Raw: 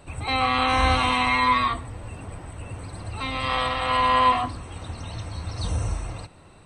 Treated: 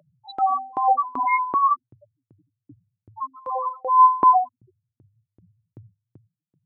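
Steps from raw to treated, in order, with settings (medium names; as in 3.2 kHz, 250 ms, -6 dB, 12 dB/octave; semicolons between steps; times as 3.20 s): elliptic band-pass 110–4400 Hz; bass shelf 490 Hz +5.5 dB; loudest bins only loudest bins 2; LFO high-pass saw up 2.6 Hz 310–3400 Hz; trim +4 dB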